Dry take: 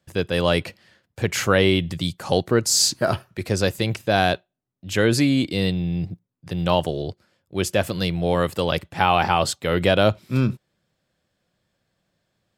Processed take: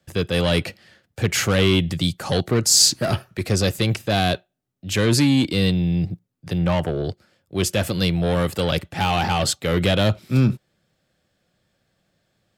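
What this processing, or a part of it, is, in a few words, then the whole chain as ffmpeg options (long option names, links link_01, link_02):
one-band saturation: -filter_complex "[0:a]bandreject=frequency=1000:width=8.9,asplit=3[link_01][link_02][link_03];[link_01]afade=type=out:start_time=6.57:duration=0.02[link_04];[link_02]highshelf=frequency=2700:width_type=q:width=1.5:gain=-9.5,afade=type=in:start_time=6.57:duration=0.02,afade=type=out:start_time=7.03:duration=0.02[link_05];[link_03]afade=type=in:start_time=7.03:duration=0.02[link_06];[link_04][link_05][link_06]amix=inputs=3:normalize=0,acrossover=split=240|2900[link_07][link_08][link_09];[link_08]asoftclip=type=tanh:threshold=-24dB[link_10];[link_07][link_10][link_09]amix=inputs=3:normalize=0,volume=4dB"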